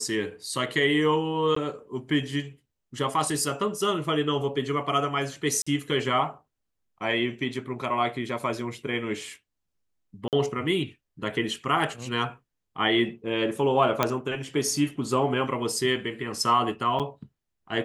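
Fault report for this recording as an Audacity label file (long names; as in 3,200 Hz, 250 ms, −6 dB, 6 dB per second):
1.550000	1.560000	drop-out 14 ms
5.620000	5.670000	drop-out 45 ms
10.280000	10.330000	drop-out 48 ms
14.030000	14.030000	click −7 dBFS
16.990000	17.000000	drop-out 7.3 ms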